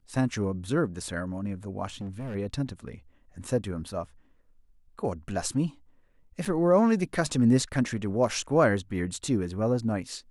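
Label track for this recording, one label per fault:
1.900000	2.360000	clipped -32 dBFS
6.450000	6.460000	dropout 5.5 ms

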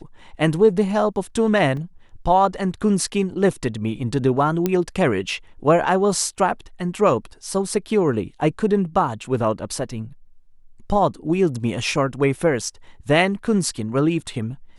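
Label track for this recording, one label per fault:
1.770000	1.770000	dropout 2.6 ms
4.660000	4.660000	pop -7 dBFS

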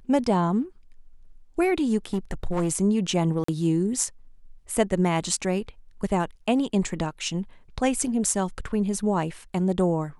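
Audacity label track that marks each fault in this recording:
2.130000	2.730000	clipped -20.5 dBFS
3.440000	3.480000	dropout 44 ms

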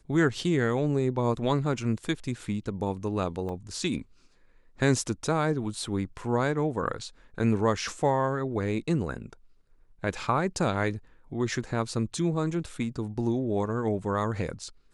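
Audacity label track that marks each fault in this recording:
3.490000	3.490000	dropout 2.1 ms

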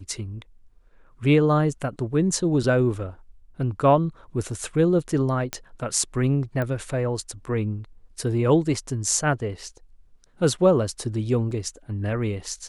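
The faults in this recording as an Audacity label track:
5.530000	5.530000	pop -11 dBFS
6.620000	6.620000	pop -16 dBFS
11.510000	11.510000	dropout 3.9 ms

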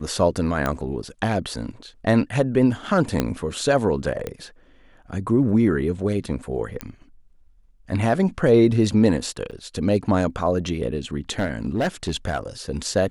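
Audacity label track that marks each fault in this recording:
0.660000	0.660000	pop -10 dBFS
3.200000	3.200000	pop -6 dBFS
4.270000	4.270000	pop -14 dBFS
6.810000	6.810000	pop -12 dBFS
9.510000	9.520000	dropout 7.6 ms
11.390000	12.380000	clipped -17.5 dBFS

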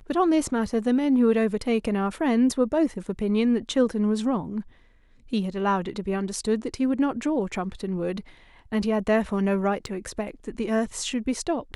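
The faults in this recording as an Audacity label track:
9.860000	9.870000	dropout 6.9 ms

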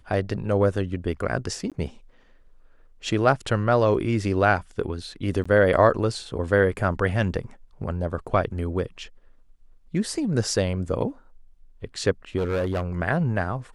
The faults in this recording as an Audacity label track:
1.700000	1.720000	dropout 17 ms
5.440000	5.460000	dropout 15 ms
12.380000	12.840000	clipped -21 dBFS

